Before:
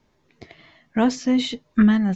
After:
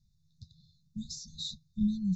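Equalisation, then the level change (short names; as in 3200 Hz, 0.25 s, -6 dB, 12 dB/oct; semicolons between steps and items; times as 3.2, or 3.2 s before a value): brick-wall FIR band-stop 200–3500 Hz; low shelf 290 Hz +6.5 dB; -7.0 dB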